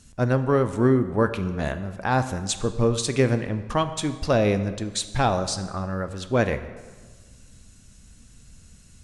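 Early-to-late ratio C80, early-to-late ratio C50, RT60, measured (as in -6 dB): 13.0 dB, 12.0 dB, 1.5 s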